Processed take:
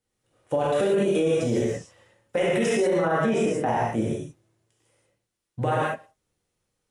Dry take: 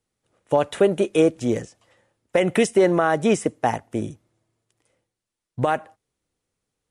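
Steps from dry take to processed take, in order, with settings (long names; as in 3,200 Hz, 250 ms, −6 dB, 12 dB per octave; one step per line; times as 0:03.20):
0:02.98–0:03.88: high-shelf EQ 4,000 Hz −8.5 dB
reverb whose tail is shaped and stops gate 210 ms flat, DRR −6.5 dB
brickwall limiter −10 dBFS, peak gain reduction 11 dB
level −5 dB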